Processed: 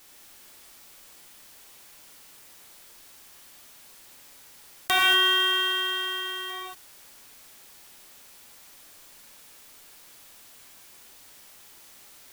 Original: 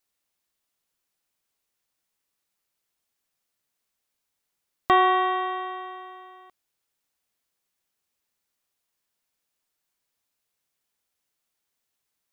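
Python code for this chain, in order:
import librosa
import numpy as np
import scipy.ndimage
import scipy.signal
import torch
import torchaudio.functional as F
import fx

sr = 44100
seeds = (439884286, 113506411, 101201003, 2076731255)

y = fx.envelope_flatten(x, sr, power=0.1)
y = fx.rev_gated(y, sr, seeds[0], gate_ms=260, shape='flat', drr_db=-6.5)
y = fx.env_flatten(y, sr, amount_pct=50)
y = y * librosa.db_to_amplitude(-9.5)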